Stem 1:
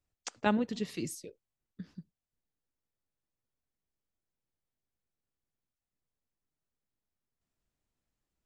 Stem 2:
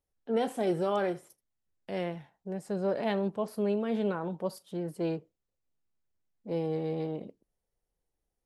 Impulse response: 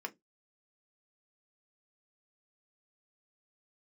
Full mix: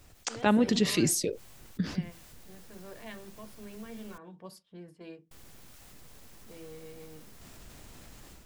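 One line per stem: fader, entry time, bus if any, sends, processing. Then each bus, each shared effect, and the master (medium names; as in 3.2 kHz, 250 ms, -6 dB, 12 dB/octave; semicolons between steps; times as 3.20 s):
-1.5 dB, 0.00 s, muted 4.18–5.31 s, no send, level flattener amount 50%
-7.5 dB, 0.00 s, send -8 dB, level-controlled noise filter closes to 520 Hz, open at -29.5 dBFS; peaking EQ 570 Hz -12 dB 2.2 oct; band-stop 1.3 kHz; auto duck -13 dB, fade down 0.85 s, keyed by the first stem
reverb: on, RT60 0.15 s, pre-delay 3 ms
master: level rider gain up to 7 dB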